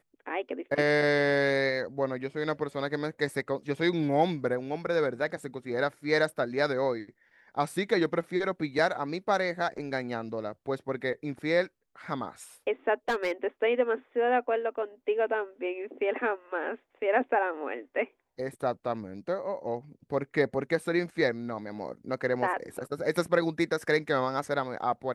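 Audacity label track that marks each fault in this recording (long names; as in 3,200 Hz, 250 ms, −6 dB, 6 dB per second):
13.080000	13.320000	clipping −23 dBFS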